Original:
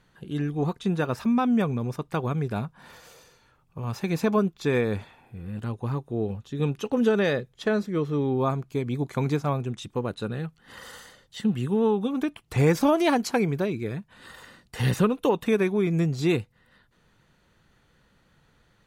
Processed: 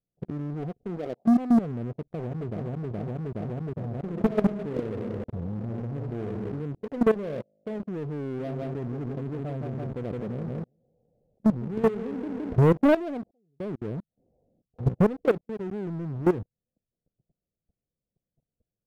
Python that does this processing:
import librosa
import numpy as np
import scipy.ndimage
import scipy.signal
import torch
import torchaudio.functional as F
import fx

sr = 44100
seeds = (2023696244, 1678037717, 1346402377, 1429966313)

y = fx.highpass(x, sr, hz=300.0, slope=12, at=(0.83, 1.25))
y = fx.echo_throw(y, sr, start_s=1.88, length_s=0.78, ms=420, feedback_pct=60, wet_db=-1.0)
y = fx.reverb_throw(y, sr, start_s=3.95, length_s=2.58, rt60_s=1.1, drr_db=3.5)
y = fx.comb_fb(y, sr, f0_hz=52.0, decay_s=1.7, harmonics='all', damping=0.0, mix_pct=70, at=(7.14, 7.8))
y = fx.echo_feedback(y, sr, ms=165, feedback_pct=44, wet_db=-7.5, at=(8.38, 12.58), fade=0.02)
y = fx.edit(y, sr, fx.fade_in_span(start_s=13.31, length_s=1.51),
    fx.fade_in_span(start_s=15.41, length_s=0.86), tone=tone)
y = scipy.signal.sosfilt(scipy.signal.cheby1(6, 1.0, 720.0, 'lowpass', fs=sr, output='sos'), y)
y = fx.level_steps(y, sr, step_db=21)
y = fx.leveller(y, sr, passes=3)
y = y * 10.0 ** (-1.0 / 20.0)